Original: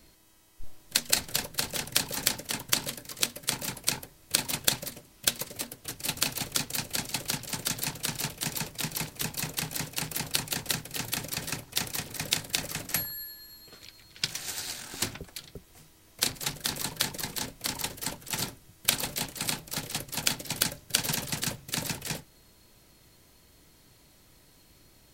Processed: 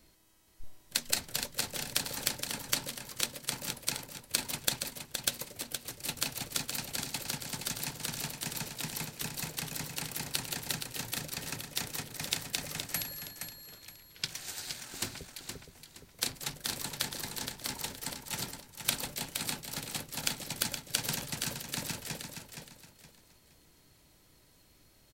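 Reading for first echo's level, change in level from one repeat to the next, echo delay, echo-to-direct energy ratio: -7.0 dB, -10.5 dB, 469 ms, -6.5 dB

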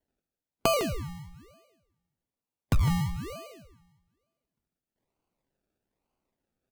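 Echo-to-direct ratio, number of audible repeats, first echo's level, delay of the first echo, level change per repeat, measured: -12.0 dB, 1, -12.0 dB, 155 ms, no regular repeats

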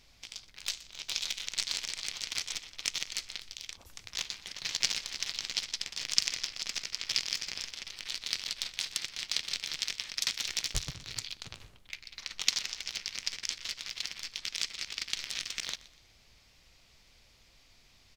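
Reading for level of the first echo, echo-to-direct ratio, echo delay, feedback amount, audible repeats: -19.5 dB, -19.0 dB, 122 ms, 38%, 2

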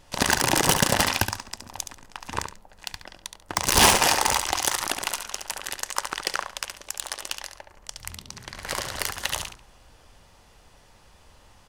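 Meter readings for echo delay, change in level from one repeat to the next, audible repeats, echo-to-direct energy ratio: 70 ms, -13.0 dB, 2, -8.0 dB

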